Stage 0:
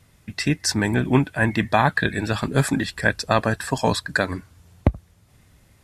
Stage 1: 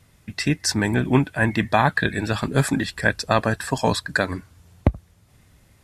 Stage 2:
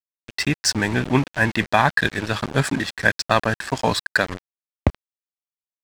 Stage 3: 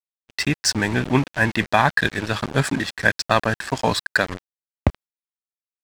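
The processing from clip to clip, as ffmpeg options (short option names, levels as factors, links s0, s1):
-af anull
-af "tiltshelf=f=970:g=-3,aeval=exprs='val(0)*gte(abs(val(0)),0.0398)':c=same,adynamicsmooth=sensitivity=2.5:basefreq=4900,volume=1.19"
-af "agate=range=0.0112:threshold=0.0126:ratio=16:detection=peak"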